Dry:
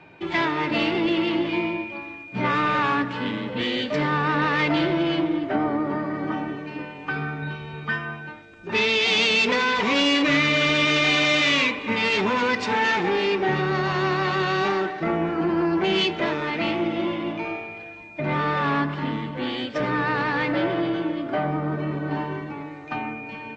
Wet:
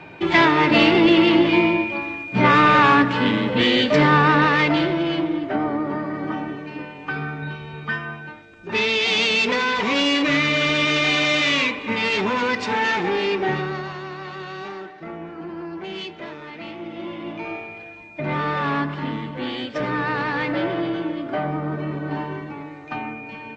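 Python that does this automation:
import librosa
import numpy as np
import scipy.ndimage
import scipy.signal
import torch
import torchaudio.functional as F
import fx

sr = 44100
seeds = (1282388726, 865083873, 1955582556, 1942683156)

y = fx.gain(x, sr, db=fx.line((4.18, 8.0), (4.96, 0.5), (13.5, 0.5), (14.04, -10.5), (16.75, -10.5), (17.56, 0.0)))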